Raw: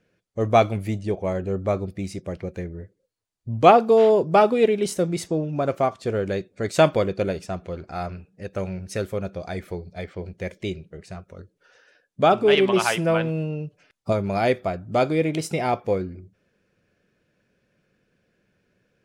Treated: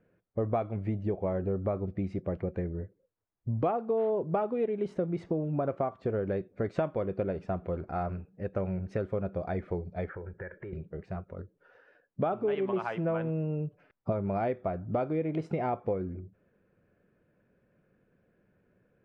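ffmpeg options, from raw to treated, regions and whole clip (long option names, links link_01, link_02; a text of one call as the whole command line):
ffmpeg -i in.wav -filter_complex "[0:a]asettb=1/sr,asplit=3[link_01][link_02][link_03];[link_01]atrim=end=10.094[link_04];[link_02]atrim=start=10.09:end=10.73,asetpts=PTS-STARTPTS,afade=type=in:duration=0.004:curve=qsin,afade=type=out:start_time=0.636:duration=0.004:curve=qsin,acompressor=threshold=-38dB:ratio=16:attack=3.2:release=140:knee=1:detection=peak,lowpass=frequency=1600:width_type=q:width=14,aecho=1:1:2.2:0.45,atrim=end_sample=28224[link_05];[link_03]atrim=start=10.726[link_06];[link_04][link_05]acrossfade=duration=0.004:curve1=hsin:curve2=qsin[link_07];[link_07][link_06]acrossfade=duration=0.004:curve1=qsin:curve2=hsin,acompressor=threshold=-27dB:ratio=6,lowpass=1400" out.wav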